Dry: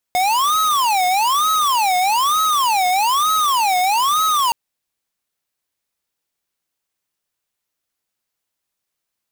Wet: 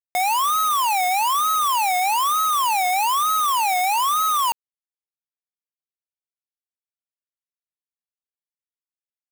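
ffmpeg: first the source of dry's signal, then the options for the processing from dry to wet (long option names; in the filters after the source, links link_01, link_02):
-f lavfi -i "aevalsrc='0.15*(2*lt(mod((1002.5*t-277.5/(2*PI*1.1)*sin(2*PI*1.1*t)),1),0.5)-1)':duration=4.37:sample_rate=44100"
-af "lowshelf=frequency=410:gain=-7,acrusher=bits=2:mix=0:aa=0.5,equalizer=frequency=4400:width_type=o:width=1.3:gain=-8"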